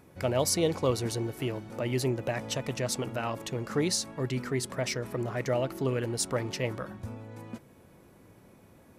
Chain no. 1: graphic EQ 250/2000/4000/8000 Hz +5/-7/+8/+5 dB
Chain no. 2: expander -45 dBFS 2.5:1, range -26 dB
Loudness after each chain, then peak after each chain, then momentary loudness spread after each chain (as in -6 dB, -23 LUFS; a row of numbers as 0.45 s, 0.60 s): -28.0 LUFS, -31.0 LUFS; -9.5 dBFS, -13.5 dBFS; 15 LU, 12 LU